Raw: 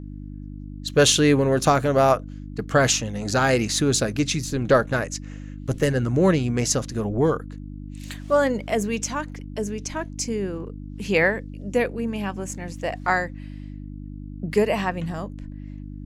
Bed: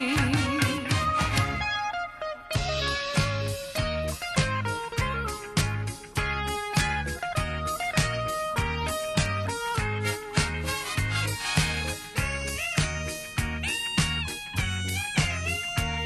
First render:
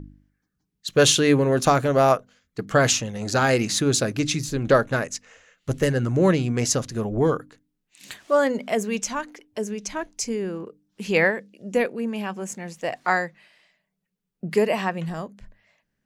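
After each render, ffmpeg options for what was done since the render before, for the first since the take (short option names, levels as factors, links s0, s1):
-af "bandreject=f=50:t=h:w=4,bandreject=f=100:t=h:w=4,bandreject=f=150:t=h:w=4,bandreject=f=200:t=h:w=4,bandreject=f=250:t=h:w=4,bandreject=f=300:t=h:w=4"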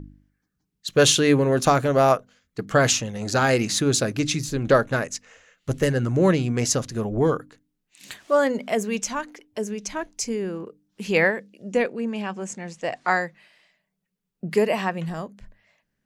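-filter_complex "[0:a]asettb=1/sr,asplit=3[s0][s1][s2];[s0]atrim=end=11.684[s3];[s1]atrim=start=11.68:end=13.21,asetpts=PTS-STARTPTS,afade=t=in:d=0.004:c=qsin,afade=t=out:st=1.526:d=0.004:c=qsin,lowpass=f=8900:w=0.5412,lowpass=f=8900:w=1.3066[s4];[s2]atrim=start=13.206[s5];[s3][s4]acrossfade=d=0.004:c1=hsin:c2=qsin[s6];[s6][s5]acrossfade=d=0.004:c1=qsin:c2=hsin"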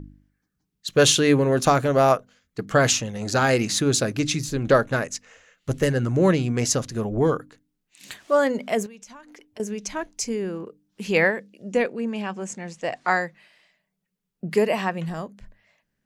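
-filter_complex "[0:a]asettb=1/sr,asplit=3[s0][s1][s2];[s0]atrim=end=8.864[s3];[s1]atrim=start=8.86:end=9.6,asetpts=PTS-STARTPTS,afade=t=in:d=0.004:c=qsin,afade=t=out:st=0.736:d=0.004:c=qsin,acompressor=threshold=0.00891:ratio=8:attack=3.2:release=140:knee=1:detection=peak[s4];[s2]atrim=start=9.596[s5];[s3][s4]acrossfade=d=0.004:c1=hsin:c2=qsin[s6];[s6][s5]acrossfade=d=0.004:c1=qsin:c2=hsin"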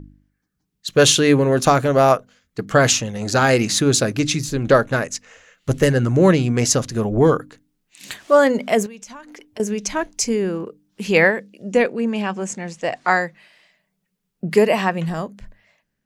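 -af "dynaudnorm=f=240:g=5:m=2.24"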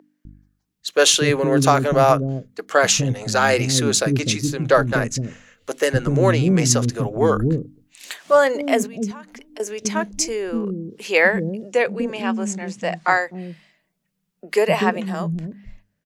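-filter_complex "[0:a]acrossover=split=340[s0][s1];[s0]adelay=250[s2];[s2][s1]amix=inputs=2:normalize=0"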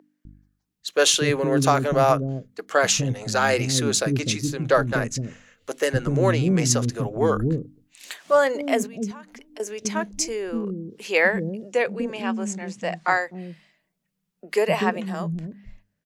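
-af "volume=0.668"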